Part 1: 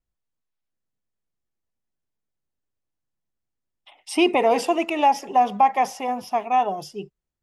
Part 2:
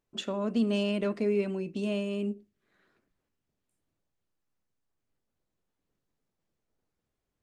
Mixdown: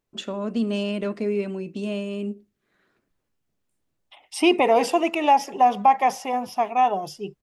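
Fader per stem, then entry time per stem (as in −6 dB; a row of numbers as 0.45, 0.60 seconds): +0.5, +2.5 decibels; 0.25, 0.00 seconds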